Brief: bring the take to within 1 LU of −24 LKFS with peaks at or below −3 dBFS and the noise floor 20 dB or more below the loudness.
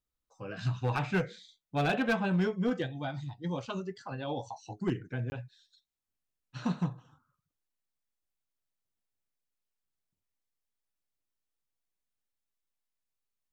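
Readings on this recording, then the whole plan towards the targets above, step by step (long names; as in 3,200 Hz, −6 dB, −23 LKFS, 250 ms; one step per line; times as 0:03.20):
share of clipped samples 0.4%; peaks flattened at −22.5 dBFS; number of dropouts 1; longest dropout 20 ms; integrated loudness −33.5 LKFS; sample peak −22.5 dBFS; target loudness −24.0 LKFS
→ clipped peaks rebuilt −22.5 dBFS
repair the gap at 0:05.30, 20 ms
level +9.5 dB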